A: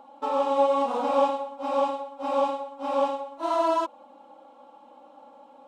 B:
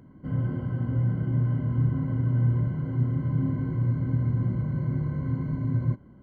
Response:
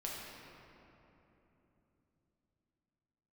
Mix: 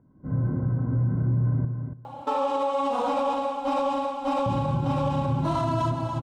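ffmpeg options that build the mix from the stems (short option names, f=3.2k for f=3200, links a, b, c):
-filter_complex "[0:a]asubboost=boost=7.5:cutoff=190,bandreject=f=60:t=h:w=6,bandreject=f=120:t=h:w=6,bandreject=f=180:t=h:w=6,bandreject=f=240:t=h:w=6,acompressor=threshold=-30dB:ratio=6,adelay=2050,volume=-2dB,asplit=2[a][b];[b]volume=-10dB[c];[1:a]lowpass=f=1.5k:w=0.5412,lowpass=f=1.5k:w=1.3066,volume=-9.5dB,asplit=3[d][e][f];[d]atrim=end=1.65,asetpts=PTS-STARTPTS,afade=t=out:st=1.646:d=0.004:c=hsin[g];[e]atrim=start=1.65:end=4.46,asetpts=PTS-STARTPTS,volume=0[h];[f]atrim=start=4.46,asetpts=PTS-STARTPTS,afade=t=in:d=0.004:c=hsin[i];[g][h][i]concat=n=3:v=0:a=1,asplit=2[j][k];[k]volume=-9dB[l];[c][l]amix=inputs=2:normalize=0,aecho=0:1:284|568|852:1|0.15|0.0225[m];[a][j][m]amix=inputs=3:normalize=0,dynaudnorm=f=160:g=3:m=12dB,alimiter=limit=-17.5dB:level=0:latency=1:release=36"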